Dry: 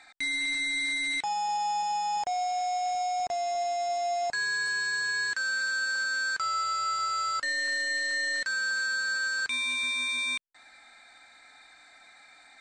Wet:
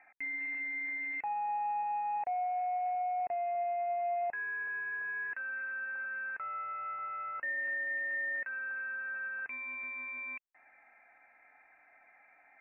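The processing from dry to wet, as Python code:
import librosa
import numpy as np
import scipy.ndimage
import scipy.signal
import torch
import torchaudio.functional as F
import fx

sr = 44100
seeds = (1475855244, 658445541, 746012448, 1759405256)

y = scipy.signal.sosfilt(scipy.signal.cheby1(6, 6, 2700.0, 'lowpass', fs=sr, output='sos'), x)
y = fx.low_shelf(y, sr, hz=180.0, db=-4.5)
y = F.gain(torch.from_numpy(y), -3.5).numpy()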